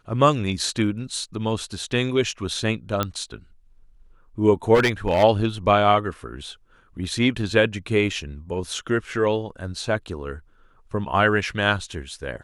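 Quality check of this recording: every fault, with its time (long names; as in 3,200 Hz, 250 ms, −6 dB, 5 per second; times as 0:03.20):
0:03.03: click −8 dBFS
0:04.74–0:05.24: clipping −14 dBFS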